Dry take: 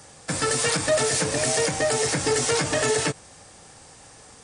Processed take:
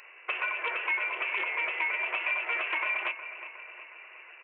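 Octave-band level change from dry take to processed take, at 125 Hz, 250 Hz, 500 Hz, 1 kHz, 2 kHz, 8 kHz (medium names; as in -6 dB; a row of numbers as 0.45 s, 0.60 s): under -40 dB, -24.0 dB, -20.0 dB, -6.0 dB, +1.0 dB, under -40 dB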